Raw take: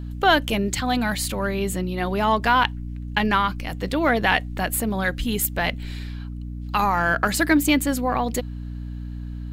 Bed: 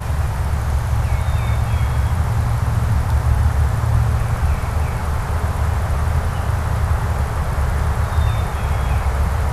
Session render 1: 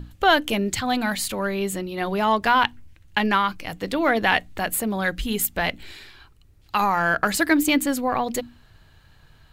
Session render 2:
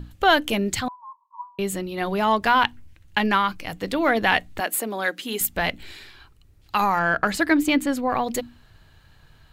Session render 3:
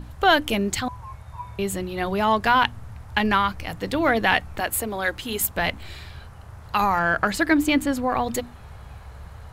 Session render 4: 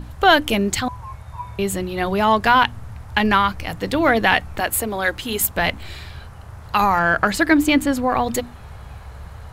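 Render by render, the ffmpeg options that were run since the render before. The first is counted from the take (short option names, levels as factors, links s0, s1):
-af "bandreject=f=60:t=h:w=6,bandreject=f=120:t=h:w=6,bandreject=f=180:t=h:w=6,bandreject=f=240:t=h:w=6,bandreject=f=300:t=h:w=6"
-filter_complex "[0:a]asettb=1/sr,asplit=3[s0][s1][s2];[s0]atrim=end=0.884[s3];[s1]atrim=start=0.88:end=1.59,asetpts=PTS-STARTPTS,afade=t=in:d=0.004:c=qsin,afade=t=out:st=0.706:d=0.004:c=qsin,asuperpass=centerf=1000:order=8:qfactor=5.8[s4];[s2]atrim=start=1.586[s5];[s3][s4]acrossfade=d=0.004:c1=hsin:c2=qsin[s6];[s6][s5]acrossfade=d=0.004:c1=qsin:c2=hsin,asettb=1/sr,asplit=3[s7][s8][s9];[s7]atrim=end=4.604[s10];[s8]atrim=start=4.6:end=5.41,asetpts=PTS-STARTPTS,afade=t=in:d=0.004:c=qsin,afade=t=out:st=0.806:d=0.004:c=qsin,highpass=f=260:w=0.5412,highpass=f=260:w=1.3066[s11];[s9]atrim=start=5.406[s12];[s10][s11]acrossfade=d=0.004:c1=hsin:c2=qsin[s13];[s13][s12]acrossfade=d=0.004:c1=qsin:c2=hsin,asettb=1/sr,asplit=3[s14][s15][s16];[s14]atrim=end=6.994[s17];[s15]atrim=start=6.99:end=8.1,asetpts=PTS-STARTPTS,afade=t=in:d=0.004:c=qsin,afade=t=out:st=1.106:d=0.004:c=qsin,highshelf=f=6600:g=-11[s18];[s16]atrim=start=8.096[s19];[s17][s18]acrossfade=d=0.004:c1=hsin:c2=qsin[s20];[s20][s19]acrossfade=d=0.004:c1=qsin:c2=hsin"
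-filter_complex "[1:a]volume=0.075[s0];[0:a][s0]amix=inputs=2:normalize=0"
-af "volume=1.58,alimiter=limit=0.794:level=0:latency=1"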